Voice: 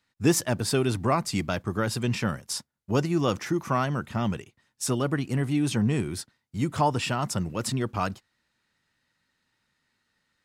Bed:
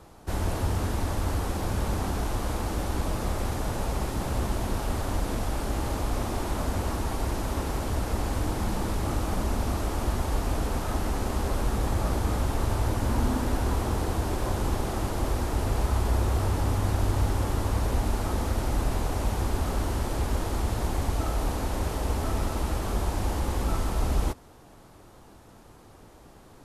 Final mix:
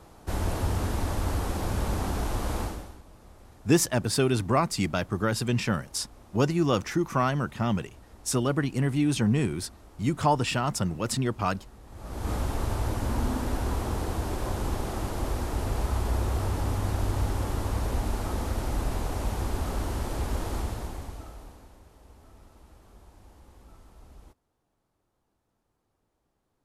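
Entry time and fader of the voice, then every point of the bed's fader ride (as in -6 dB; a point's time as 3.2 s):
3.45 s, +0.5 dB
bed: 2.63 s -0.5 dB
3.03 s -23 dB
11.85 s -23 dB
12.3 s -2.5 dB
20.58 s -2.5 dB
21.83 s -25.5 dB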